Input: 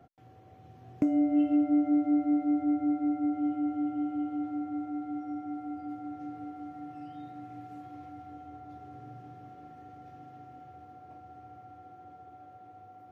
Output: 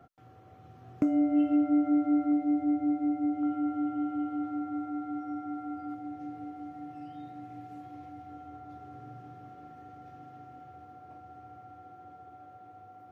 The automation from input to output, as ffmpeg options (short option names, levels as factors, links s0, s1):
-af "asetnsamples=n=441:p=0,asendcmd='2.32 equalizer g -2.5;3.43 equalizer g 9.5;5.94 equalizer g -1.5;8.3 equalizer g 4.5',equalizer=f=1300:t=o:w=0.33:g=9.5"